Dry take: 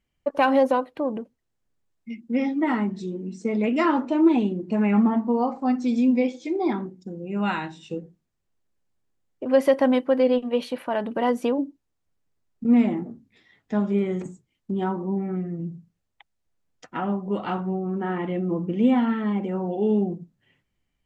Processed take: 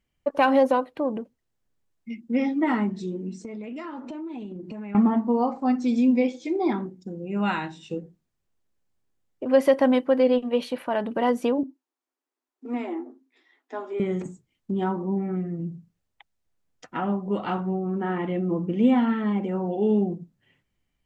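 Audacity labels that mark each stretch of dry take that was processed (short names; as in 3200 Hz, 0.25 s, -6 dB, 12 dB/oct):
3.330000	4.950000	compressor 8:1, threshold -33 dBFS
11.630000	14.000000	rippled Chebyshev high-pass 250 Hz, ripple 6 dB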